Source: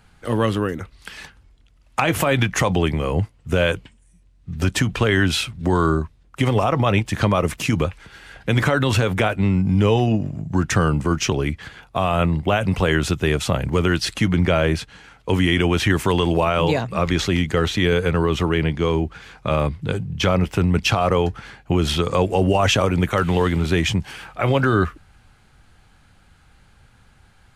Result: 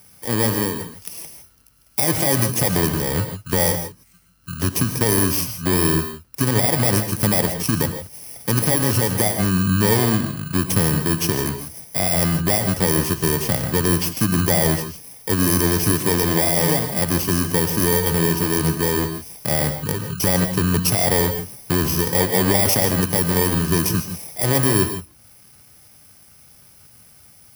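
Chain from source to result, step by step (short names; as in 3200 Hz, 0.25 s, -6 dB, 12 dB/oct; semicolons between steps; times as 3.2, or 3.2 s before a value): FFT order left unsorted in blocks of 32 samples; HPF 92 Hz; non-linear reverb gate 0.18 s rising, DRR 8 dB; mismatched tape noise reduction encoder only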